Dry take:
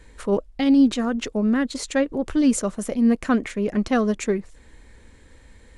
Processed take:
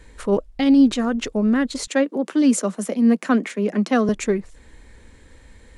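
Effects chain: 1.87–4.09 steep high-pass 170 Hz 96 dB/oct; gain +2 dB

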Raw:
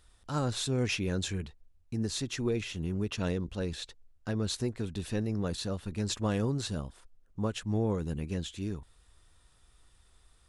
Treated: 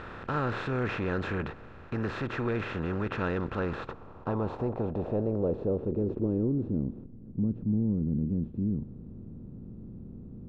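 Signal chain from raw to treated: per-bin compression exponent 0.4; soft clip -18 dBFS, distortion -20 dB; low-pass sweep 1600 Hz -> 220 Hz, 3.44–7.15; gain -2.5 dB

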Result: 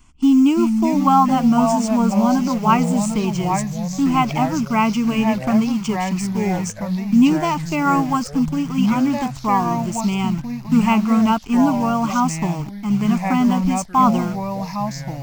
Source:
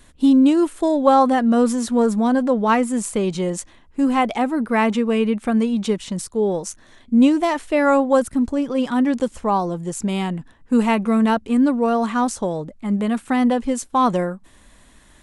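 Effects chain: in parallel at -6 dB: bit-crush 5-bit; on the sum: fixed phaser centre 2600 Hz, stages 8; echoes that change speed 0.302 s, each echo -3 st, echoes 3, each echo -6 dB

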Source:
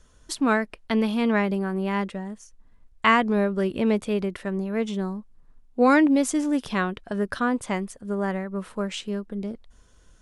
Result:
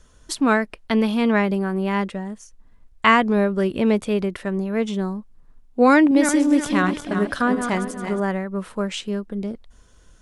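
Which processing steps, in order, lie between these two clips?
5.93–8.2 regenerating reverse delay 0.18 s, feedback 59%, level -7 dB; gain +3.5 dB

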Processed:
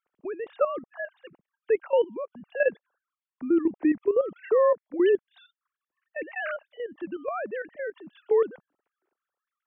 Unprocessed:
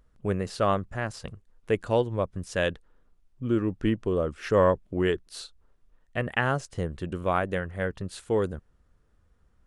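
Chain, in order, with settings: sine-wave speech; level quantiser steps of 12 dB; gain +5 dB

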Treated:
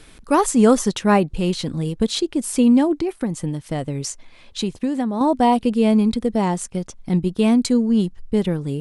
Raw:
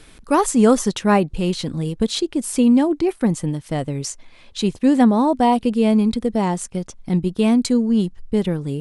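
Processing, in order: 2.93–5.21 compressor 10:1, threshold -19 dBFS, peak gain reduction 10.5 dB

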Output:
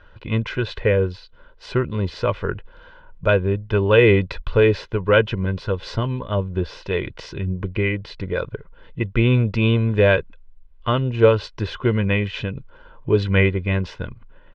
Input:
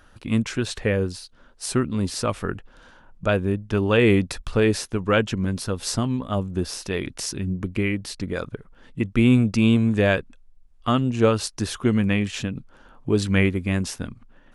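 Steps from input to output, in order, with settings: LPF 3600 Hz 24 dB/oct; comb 2 ms, depth 61%; gain +2 dB

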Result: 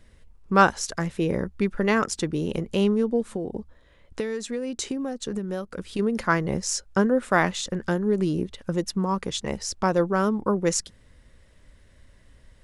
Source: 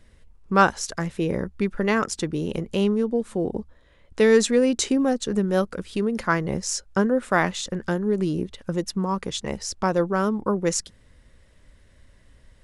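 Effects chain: 3.23–5.99 compressor 16:1, threshold -26 dBFS, peak gain reduction 15.5 dB

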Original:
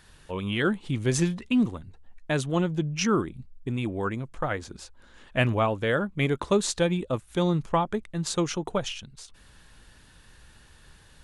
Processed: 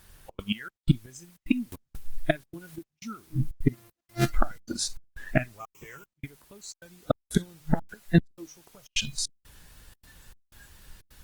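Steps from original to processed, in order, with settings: 3.72–4.34 sample sorter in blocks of 128 samples; de-hum 154.3 Hz, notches 32; flipped gate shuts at -21 dBFS, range -26 dB; added noise white -56 dBFS; spectral noise reduction 18 dB; 5.6–6.24 ripple EQ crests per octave 0.73, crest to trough 16 dB; step gate "xxx.xxx..xx" 154 bpm -60 dB; low shelf 100 Hz +5 dB; 1.72–2.76 upward compressor, threshold -45 dBFS; maximiser +23 dB; gain -7.5 dB; Opus 24 kbps 48000 Hz

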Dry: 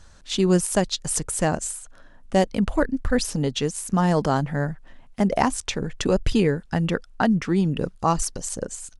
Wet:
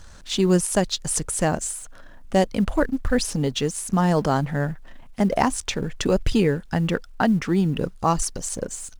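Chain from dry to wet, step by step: G.711 law mismatch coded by mu

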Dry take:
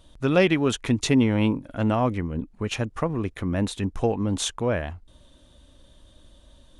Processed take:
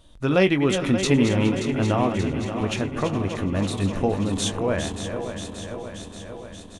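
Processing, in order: regenerating reverse delay 0.29 s, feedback 80%, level -8.5 dB; doubler 21 ms -10 dB; on a send: feedback echo 0.418 s, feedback 47%, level -17.5 dB

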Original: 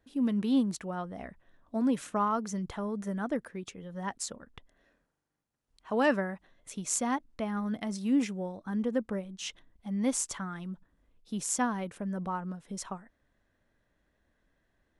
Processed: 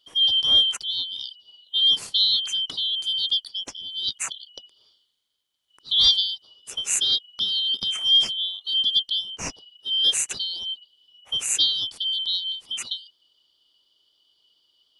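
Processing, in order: four-band scrambler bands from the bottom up 3412; gain +8 dB

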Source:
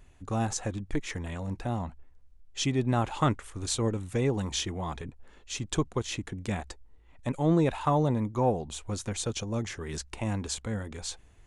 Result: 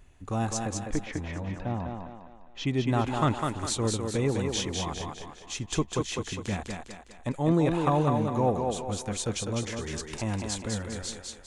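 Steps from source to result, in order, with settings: 0.63–2.67 air absorption 220 m; thinning echo 0.203 s, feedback 47%, high-pass 190 Hz, level -3.5 dB

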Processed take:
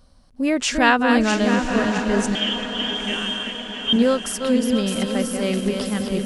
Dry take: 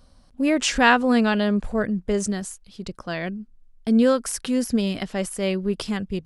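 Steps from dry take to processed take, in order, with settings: regenerating reverse delay 0.33 s, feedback 62%, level -5.5 dB; 2.35–3.93 inverted band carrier 3400 Hz; diffused feedback echo 0.986 s, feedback 50%, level -10 dB

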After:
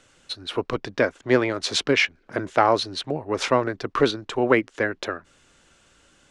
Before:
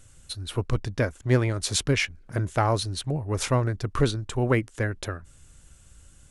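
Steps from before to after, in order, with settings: three-band isolator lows -22 dB, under 230 Hz, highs -22 dB, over 5500 Hz; gain +6.5 dB

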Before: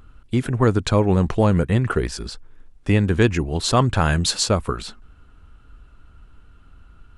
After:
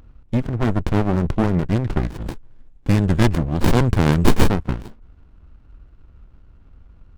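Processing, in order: Wiener smoothing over 9 samples; 2.21–4.49 graphic EQ 125/4000/8000 Hz +3/+8/+12 dB; running maximum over 65 samples; gain +2 dB

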